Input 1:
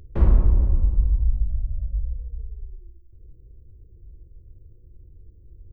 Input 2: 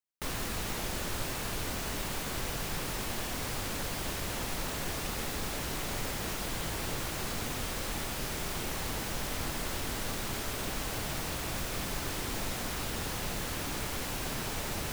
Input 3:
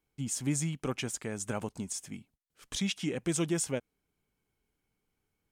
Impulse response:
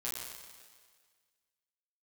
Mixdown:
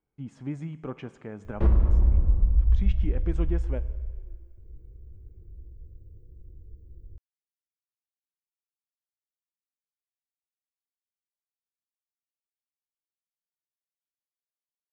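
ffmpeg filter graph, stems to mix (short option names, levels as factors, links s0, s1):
-filter_complex "[0:a]adelay=1450,volume=0.75,asplit=2[s0][s1];[s1]volume=0.501[s2];[2:a]lowpass=1500,volume=0.75,asplit=2[s3][s4];[s4]volume=0.188[s5];[3:a]atrim=start_sample=2205[s6];[s2][s5]amix=inputs=2:normalize=0[s7];[s7][s6]afir=irnorm=-1:irlink=0[s8];[s0][s3][s8]amix=inputs=3:normalize=0,alimiter=limit=0.266:level=0:latency=1:release=192"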